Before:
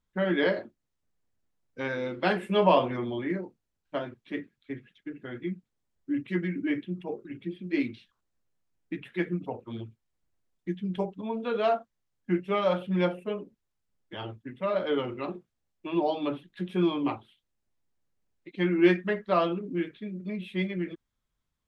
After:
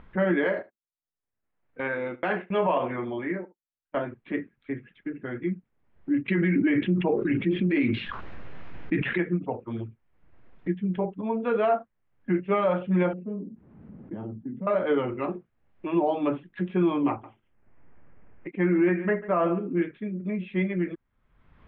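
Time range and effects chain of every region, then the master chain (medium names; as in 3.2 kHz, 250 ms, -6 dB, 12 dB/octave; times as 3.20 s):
0.44–3.97 s: bass shelf 360 Hz -8 dB + gate -42 dBFS, range -33 dB + delay 72 ms -20 dB
6.28–9.18 s: treble shelf 2.6 kHz +7 dB + level flattener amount 70%
13.13–14.67 s: band-pass filter 210 Hz, Q 2.3 + level flattener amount 50%
17.09–19.82 s: low-pass 2.5 kHz 24 dB/octave + delay 143 ms -18 dB
whole clip: upward compressor, threshold -35 dBFS; peak limiter -19.5 dBFS; low-pass 2.4 kHz 24 dB/octave; trim +4.5 dB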